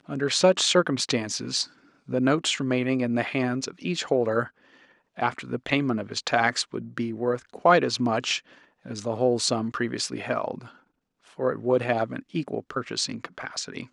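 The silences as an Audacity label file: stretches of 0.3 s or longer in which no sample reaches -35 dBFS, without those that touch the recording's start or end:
1.650000	2.090000	silence
4.470000	5.180000	silence
8.390000	8.860000	silence
10.660000	11.390000	silence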